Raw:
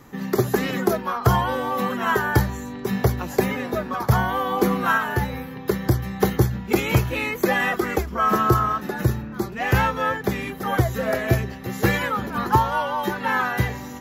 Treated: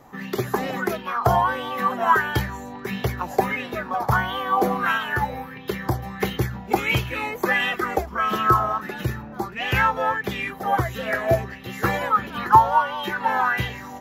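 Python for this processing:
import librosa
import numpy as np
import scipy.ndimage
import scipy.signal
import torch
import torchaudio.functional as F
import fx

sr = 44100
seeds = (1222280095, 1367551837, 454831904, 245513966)

y = fx.bell_lfo(x, sr, hz=1.5, low_hz=660.0, high_hz=3200.0, db=15)
y = y * librosa.db_to_amplitude(-5.5)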